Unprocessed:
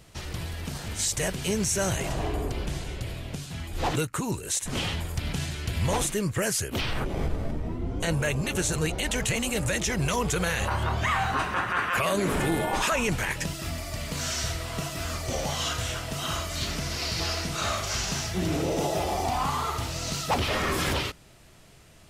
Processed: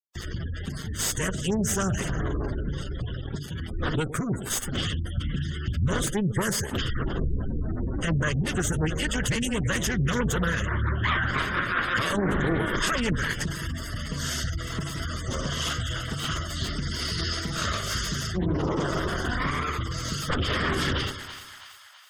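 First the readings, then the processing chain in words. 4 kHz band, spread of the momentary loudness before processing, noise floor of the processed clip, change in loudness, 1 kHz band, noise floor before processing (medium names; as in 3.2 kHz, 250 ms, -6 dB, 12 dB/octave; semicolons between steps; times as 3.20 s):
0.0 dB, 8 LU, -38 dBFS, +0.5 dB, -2.5 dB, -52 dBFS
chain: comb filter that takes the minimum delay 0.62 ms; word length cut 6-bit, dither none; two-band feedback delay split 790 Hz, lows 114 ms, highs 328 ms, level -12 dB; spectral gate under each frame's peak -20 dB strong; loudspeaker Doppler distortion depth 0.29 ms; trim +2.5 dB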